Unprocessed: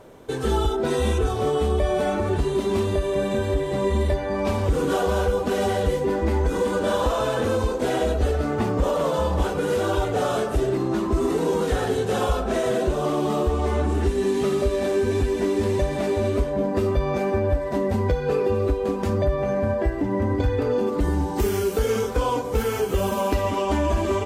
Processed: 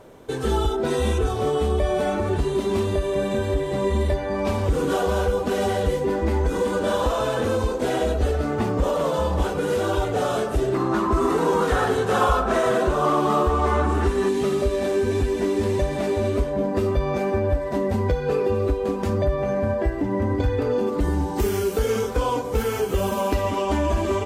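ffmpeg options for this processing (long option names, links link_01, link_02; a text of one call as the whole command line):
ffmpeg -i in.wav -filter_complex "[0:a]asettb=1/sr,asplit=3[link_01][link_02][link_03];[link_01]atrim=end=10.744[link_04];[link_02]atrim=start=10.74:end=14.29,asetpts=PTS-STARTPTS,afade=type=in:duration=0.004:curve=qsin,afade=type=out:start_time=3.546:duration=0.004:curve=qsin,equalizer=frequency=1200:width_type=o:width=1.1:gain=10.5[link_05];[link_03]atrim=start=14.286[link_06];[link_04][link_05]acrossfade=duration=0.004:curve1=hsin:curve2=qsin[link_07];[link_07][link_06]acrossfade=duration=0.004:curve1=qsin:curve2=hsin" out.wav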